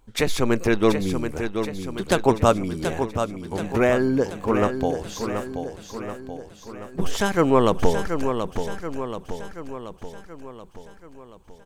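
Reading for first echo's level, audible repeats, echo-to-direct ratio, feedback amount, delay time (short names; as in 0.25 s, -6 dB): -7.5 dB, 6, -6.0 dB, 55%, 0.73 s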